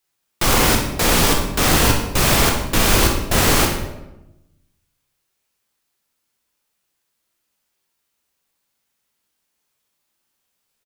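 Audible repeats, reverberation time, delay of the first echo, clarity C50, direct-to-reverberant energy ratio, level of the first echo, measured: 1, 0.95 s, 63 ms, 4.0 dB, 1.0 dB, -9.0 dB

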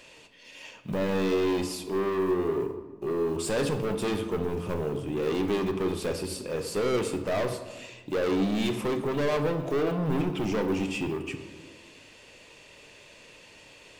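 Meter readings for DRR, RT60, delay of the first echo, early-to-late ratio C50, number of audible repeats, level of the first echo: 7.0 dB, 1.3 s, no echo, 9.5 dB, no echo, no echo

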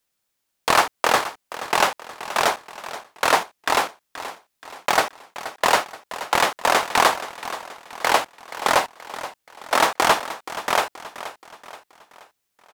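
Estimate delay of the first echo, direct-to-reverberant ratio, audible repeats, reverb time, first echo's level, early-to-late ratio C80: 477 ms, no reverb, 4, no reverb, -14.0 dB, no reverb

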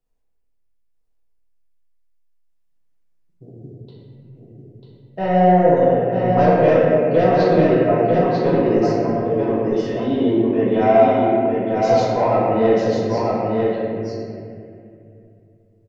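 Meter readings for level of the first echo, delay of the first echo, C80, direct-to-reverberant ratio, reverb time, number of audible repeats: -4.0 dB, 944 ms, -3.0 dB, -9.0 dB, 2.5 s, 1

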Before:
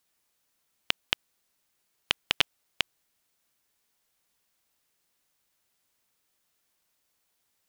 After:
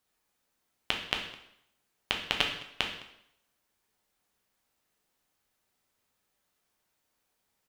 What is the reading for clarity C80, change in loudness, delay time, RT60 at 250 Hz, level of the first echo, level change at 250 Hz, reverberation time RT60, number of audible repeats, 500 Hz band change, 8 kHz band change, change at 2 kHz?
9.5 dB, -2.0 dB, 210 ms, 0.75 s, -21.0 dB, +2.5 dB, 0.75 s, 1, +2.0 dB, -4.0 dB, -1.0 dB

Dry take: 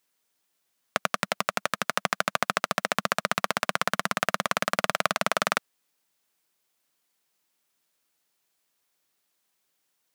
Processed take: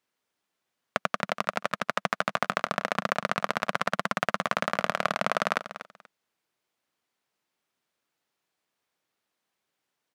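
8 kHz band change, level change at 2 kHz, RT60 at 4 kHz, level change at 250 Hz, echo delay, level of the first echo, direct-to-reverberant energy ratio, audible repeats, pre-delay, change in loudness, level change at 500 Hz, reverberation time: -9.5 dB, -1.5 dB, no reverb, 0.0 dB, 241 ms, -13.0 dB, no reverb, 2, no reverb, -1.5 dB, 0.0 dB, no reverb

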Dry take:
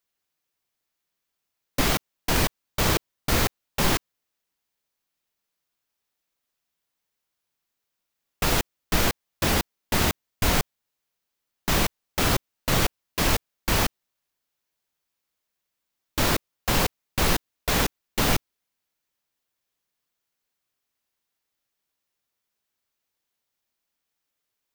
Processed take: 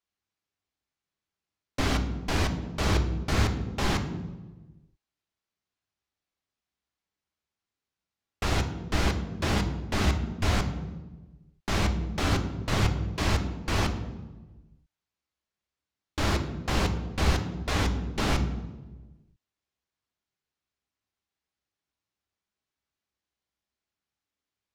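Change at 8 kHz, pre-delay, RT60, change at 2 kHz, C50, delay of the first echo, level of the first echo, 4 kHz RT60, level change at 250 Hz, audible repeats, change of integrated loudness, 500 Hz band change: -10.0 dB, 3 ms, 1.2 s, -4.5 dB, 10.0 dB, no echo, no echo, 0.80 s, -0.5 dB, no echo, -3.5 dB, -4.0 dB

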